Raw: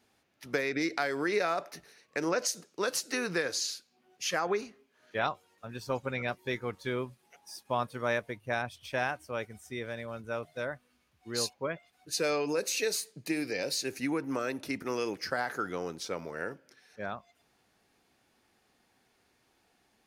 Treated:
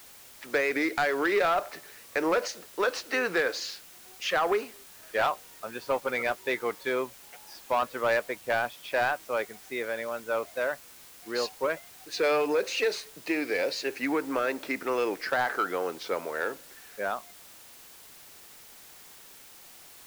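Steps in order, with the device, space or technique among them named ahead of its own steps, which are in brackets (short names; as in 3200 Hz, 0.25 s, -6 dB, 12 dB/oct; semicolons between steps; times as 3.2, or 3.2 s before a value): tape answering machine (BPF 390–2800 Hz; soft clip -26.5 dBFS, distortion -14 dB; wow and flutter; white noise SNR 20 dB); gain +8.5 dB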